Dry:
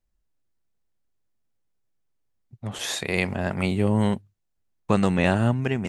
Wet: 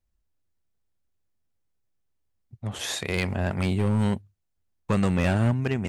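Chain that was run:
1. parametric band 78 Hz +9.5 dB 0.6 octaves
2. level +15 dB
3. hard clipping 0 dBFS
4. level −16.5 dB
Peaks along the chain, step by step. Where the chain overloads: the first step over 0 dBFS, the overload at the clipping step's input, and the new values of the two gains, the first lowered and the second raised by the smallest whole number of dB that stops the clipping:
−5.5, +9.5, 0.0, −16.5 dBFS
step 2, 9.5 dB
step 2 +5 dB, step 4 −6.5 dB

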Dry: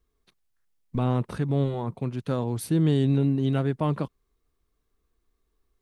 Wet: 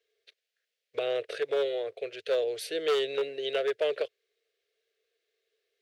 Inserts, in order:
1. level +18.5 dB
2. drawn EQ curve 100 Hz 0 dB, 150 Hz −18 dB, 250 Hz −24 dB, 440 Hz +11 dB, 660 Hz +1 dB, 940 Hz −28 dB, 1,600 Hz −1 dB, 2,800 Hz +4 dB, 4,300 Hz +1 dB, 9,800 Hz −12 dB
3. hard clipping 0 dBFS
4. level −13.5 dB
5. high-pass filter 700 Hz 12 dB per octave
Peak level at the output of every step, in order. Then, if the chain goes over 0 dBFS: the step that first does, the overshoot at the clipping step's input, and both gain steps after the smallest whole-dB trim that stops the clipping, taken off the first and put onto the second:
+6.5, +5.0, 0.0, −13.5, −16.0 dBFS
step 1, 5.0 dB
step 1 +13.5 dB, step 4 −8.5 dB

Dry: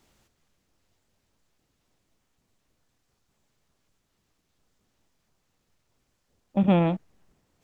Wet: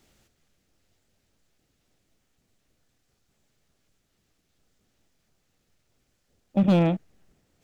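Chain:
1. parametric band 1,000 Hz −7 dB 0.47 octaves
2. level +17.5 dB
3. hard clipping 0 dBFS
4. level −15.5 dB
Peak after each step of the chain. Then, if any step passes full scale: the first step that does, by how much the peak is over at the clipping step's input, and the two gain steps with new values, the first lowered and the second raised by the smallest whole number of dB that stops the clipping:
−12.0, +5.5, 0.0, −15.5 dBFS
step 2, 5.5 dB
step 2 +11.5 dB, step 4 −9.5 dB

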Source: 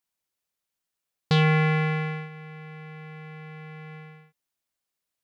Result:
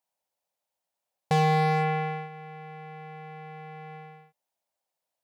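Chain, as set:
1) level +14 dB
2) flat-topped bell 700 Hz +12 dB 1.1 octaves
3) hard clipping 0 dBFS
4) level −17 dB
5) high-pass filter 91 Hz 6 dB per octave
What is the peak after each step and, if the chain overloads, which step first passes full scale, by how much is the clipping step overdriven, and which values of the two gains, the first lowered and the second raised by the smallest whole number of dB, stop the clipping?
+2.5, +5.5, 0.0, −17.0, −14.0 dBFS
step 1, 5.5 dB
step 1 +8 dB, step 4 −11 dB

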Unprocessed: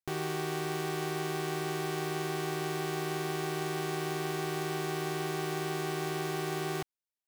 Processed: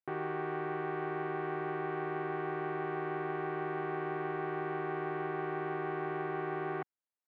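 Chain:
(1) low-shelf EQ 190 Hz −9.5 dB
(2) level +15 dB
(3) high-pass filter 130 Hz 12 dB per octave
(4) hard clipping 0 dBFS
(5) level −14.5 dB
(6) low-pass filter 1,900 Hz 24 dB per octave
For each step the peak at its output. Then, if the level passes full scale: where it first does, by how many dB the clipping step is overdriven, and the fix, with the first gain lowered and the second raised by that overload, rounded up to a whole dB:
−22.0, −7.0, −5.0, −5.0, −19.5, −21.5 dBFS
no step passes full scale

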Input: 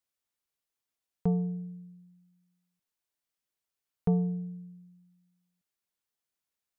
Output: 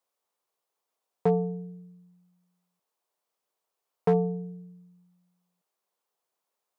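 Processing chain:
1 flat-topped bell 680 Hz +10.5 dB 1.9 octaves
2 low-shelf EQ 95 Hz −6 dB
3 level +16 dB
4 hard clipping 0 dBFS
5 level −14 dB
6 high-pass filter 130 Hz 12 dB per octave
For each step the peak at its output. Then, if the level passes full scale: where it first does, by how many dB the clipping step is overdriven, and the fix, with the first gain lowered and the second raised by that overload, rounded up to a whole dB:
−11.5, −11.5, +4.5, 0.0, −14.0, −11.0 dBFS
step 3, 4.5 dB
step 3 +11 dB, step 5 −9 dB

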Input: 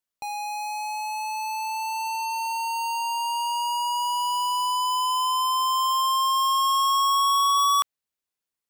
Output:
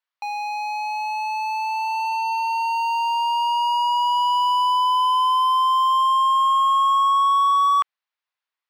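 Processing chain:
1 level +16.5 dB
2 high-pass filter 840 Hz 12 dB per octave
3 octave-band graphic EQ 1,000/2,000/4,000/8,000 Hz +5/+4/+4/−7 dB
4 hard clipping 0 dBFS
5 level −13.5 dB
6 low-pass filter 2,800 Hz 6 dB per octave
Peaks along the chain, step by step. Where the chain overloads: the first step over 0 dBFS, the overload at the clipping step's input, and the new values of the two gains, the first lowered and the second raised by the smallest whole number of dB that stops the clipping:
−3.0, +3.0, +6.0, 0.0, −13.5, −13.5 dBFS
step 2, 6.0 dB
step 1 +10.5 dB, step 5 −7.5 dB

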